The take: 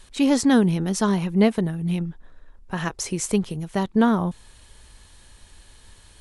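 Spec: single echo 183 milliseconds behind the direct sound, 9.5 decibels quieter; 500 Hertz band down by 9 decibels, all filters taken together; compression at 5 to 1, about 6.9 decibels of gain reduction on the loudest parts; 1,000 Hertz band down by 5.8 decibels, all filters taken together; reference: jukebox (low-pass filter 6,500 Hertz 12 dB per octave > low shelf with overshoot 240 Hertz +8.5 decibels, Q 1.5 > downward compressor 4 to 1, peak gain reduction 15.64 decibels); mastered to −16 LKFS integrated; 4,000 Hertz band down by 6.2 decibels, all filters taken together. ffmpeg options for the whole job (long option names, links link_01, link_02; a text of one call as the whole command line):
ffmpeg -i in.wav -af "equalizer=frequency=500:width_type=o:gain=-8.5,equalizer=frequency=1000:width_type=o:gain=-3.5,equalizer=frequency=4000:width_type=o:gain=-7.5,acompressor=threshold=-23dB:ratio=5,lowpass=6500,lowshelf=frequency=240:width_type=q:width=1.5:gain=8.5,aecho=1:1:183:0.335,acompressor=threshold=-32dB:ratio=4,volume=17.5dB" out.wav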